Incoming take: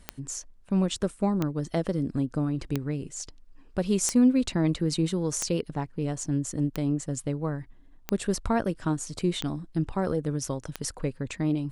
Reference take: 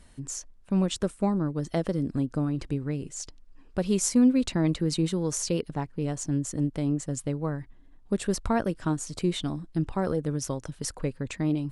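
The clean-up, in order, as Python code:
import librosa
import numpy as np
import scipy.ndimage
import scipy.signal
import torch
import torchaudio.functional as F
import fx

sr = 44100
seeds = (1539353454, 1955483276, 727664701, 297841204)

y = fx.fix_declick_ar(x, sr, threshold=10.0)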